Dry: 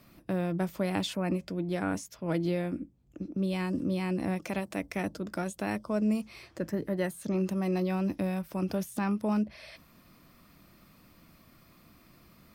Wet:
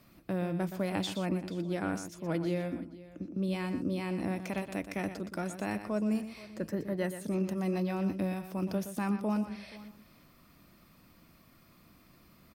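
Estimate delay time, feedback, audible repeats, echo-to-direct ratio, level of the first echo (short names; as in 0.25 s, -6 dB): 0.121 s, no steady repeat, 3, -10.0 dB, -10.5 dB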